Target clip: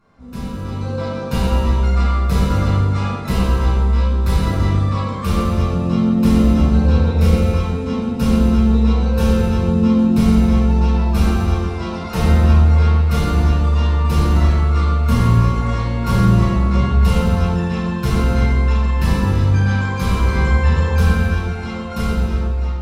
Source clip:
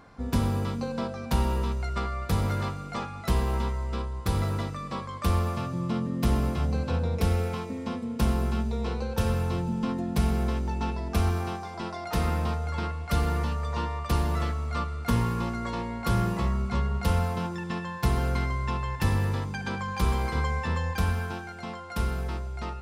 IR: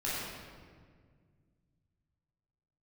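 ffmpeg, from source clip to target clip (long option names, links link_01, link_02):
-filter_complex "[0:a]dynaudnorm=framelen=240:gausssize=7:maxgain=14dB[link_01];[1:a]atrim=start_sample=2205,asetrate=66150,aresample=44100[link_02];[link_01][link_02]afir=irnorm=-1:irlink=0,volume=-5.5dB"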